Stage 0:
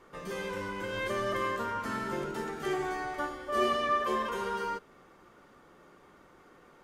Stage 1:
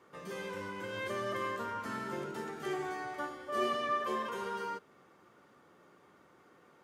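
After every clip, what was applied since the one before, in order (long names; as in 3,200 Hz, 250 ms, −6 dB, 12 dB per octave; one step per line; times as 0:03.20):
high-pass filter 83 Hz 24 dB per octave
level −4.5 dB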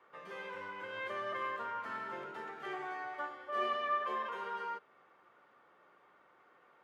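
three-way crossover with the lows and the highs turned down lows −14 dB, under 510 Hz, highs −18 dB, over 3,400 Hz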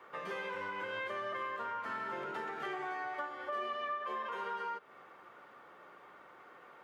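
downward compressor 5 to 1, threshold −46 dBFS, peak gain reduction 15 dB
level +9 dB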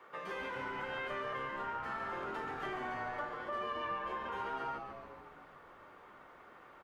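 echo with shifted repeats 141 ms, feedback 62%, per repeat −130 Hz, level −7 dB
level −1.5 dB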